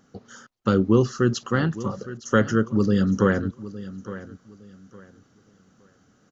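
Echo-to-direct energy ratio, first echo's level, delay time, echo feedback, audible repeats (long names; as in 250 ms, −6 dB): −15.0 dB, −15.5 dB, 862 ms, 26%, 2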